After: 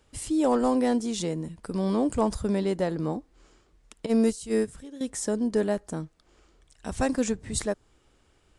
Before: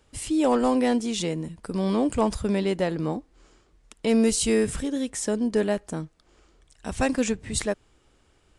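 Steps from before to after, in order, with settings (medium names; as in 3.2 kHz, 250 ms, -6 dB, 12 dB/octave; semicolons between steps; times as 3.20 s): 4.06–5.01 s: gate -20 dBFS, range -13 dB; dynamic bell 2.6 kHz, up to -7 dB, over -50 dBFS, Q 1.5; trim -1.5 dB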